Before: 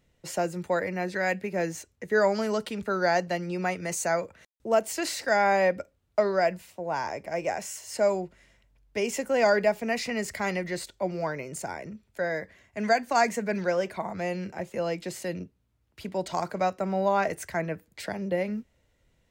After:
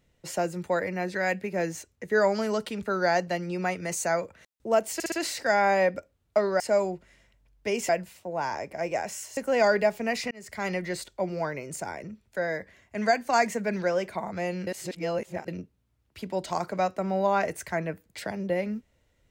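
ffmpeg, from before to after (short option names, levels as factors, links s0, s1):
-filter_complex "[0:a]asplit=10[s0][s1][s2][s3][s4][s5][s6][s7][s8][s9];[s0]atrim=end=5.002[s10];[s1]atrim=start=4.938:end=5.002[s11];[s2]atrim=start=4.938:end=5.002[s12];[s3]atrim=start=4.938:end=6.422[s13];[s4]atrim=start=7.898:end=9.192[s14];[s5]atrim=start=6.418:end=7.902[s15];[s6]atrim=start=9.188:end=10.13,asetpts=PTS-STARTPTS,afade=t=out:st=0.938:d=0.004:c=hsin[s16];[s7]atrim=start=10.13:end=14.492,asetpts=PTS-STARTPTS,afade=t=in:d=0.41[s17];[s8]atrim=start=14.488:end=15.302,asetpts=PTS-STARTPTS,areverse[s18];[s9]atrim=start=15.298[s19];[s10][s11]acrossfade=d=0.004:c1=hsin:c2=hsin[s20];[s20][s12]acrossfade=d=0.004:c1=hsin:c2=hsin[s21];[s21][s13]acrossfade=d=0.004:c1=hsin:c2=hsin[s22];[s22][s14]acrossfade=d=0.004:c1=hsin:c2=hsin[s23];[s23][s15]acrossfade=d=0.004:c1=hsin:c2=hsin[s24];[s16][s17]concat=n=2:v=0:a=1[s25];[s24][s25]acrossfade=d=0.004:c1=hsin:c2=hsin[s26];[s26][s18]acrossfade=d=0.004:c1=hsin:c2=hsin[s27];[s27][s19]acrossfade=d=0.004:c1=hsin:c2=hsin"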